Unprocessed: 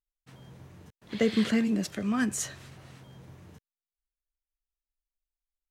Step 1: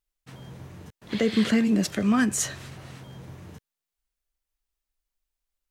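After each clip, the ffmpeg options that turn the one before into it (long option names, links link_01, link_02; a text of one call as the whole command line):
ffmpeg -i in.wav -af "alimiter=limit=-19.5dB:level=0:latency=1:release=283,volume=7dB" out.wav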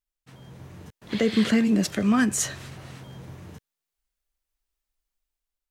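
ffmpeg -i in.wav -af "dynaudnorm=framelen=240:gausssize=5:maxgain=6dB,volume=-5dB" out.wav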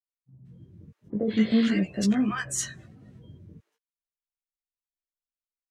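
ffmpeg -i in.wav -filter_complex "[0:a]afftdn=noise_reduction=22:noise_floor=-39,acrossover=split=820[link_01][link_02];[link_02]adelay=180[link_03];[link_01][link_03]amix=inputs=2:normalize=0,flanger=delay=15:depth=4.6:speed=0.46" out.wav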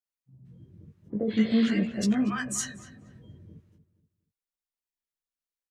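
ffmpeg -i in.wav -filter_complex "[0:a]asplit=2[link_01][link_02];[link_02]adelay=237,lowpass=frequency=2000:poles=1,volume=-12dB,asplit=2[link_03][link_04];[link_04]adelay=237,lowpass=frequency=2000:poles=1,volume=0.34,asplit=2[link_05][link_06];[link_06]adelay=237,lowpass=frequency=2000:poles=1,volume=0.34[link_07];[link_01][link_03][link_05][link_07]amix=inputs=4:normalize=0,volume=-1.5dB" out.wav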